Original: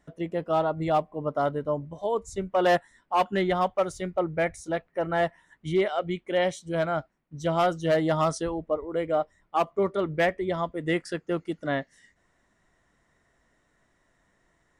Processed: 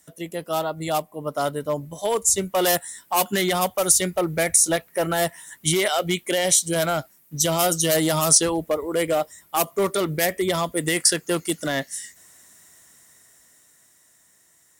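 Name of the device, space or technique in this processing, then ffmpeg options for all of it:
FM broadcast chain: -filter_complex "[0:a]highpass=77,dynaudnorm=framelen=240:gausssize=17:maxgain=9dB,acrossover=split=580|5600[link_01][link_02][link_03];[link_01]acompressor=threshold=-18dB:ratio=4[link_04];[link_02]acompressor=threshold=-20dB:ratio=4[link_05];[link_03]acompressor=threshold=-41dB:ratio=4[link_06];[link_04][link_05][link_06]amix=inputs=3:normalize=0,aemphasis=mode=production:type=75fm,alimiter=limit=-12.5dB:level=0:latency=1:release=37,asoftclip=type=hard:threshold=-15.5dB,lowpass=frequency=15000:width=0.5412,lowpass=frequency=15000:width=1.3066,aemphasis=mode=production:type=75fm"

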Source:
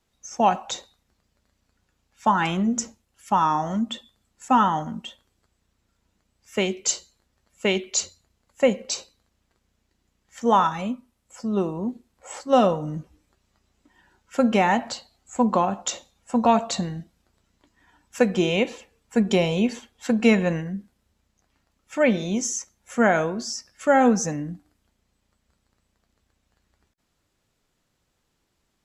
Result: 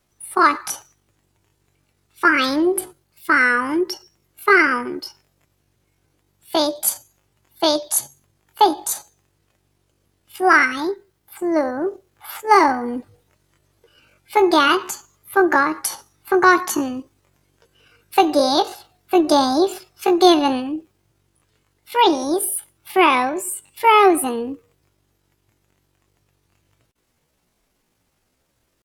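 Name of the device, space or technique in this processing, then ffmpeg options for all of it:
chipmunk voice: -af "asetrate=70004,aresample=44100,atempo=0.629961,volume=5dB"

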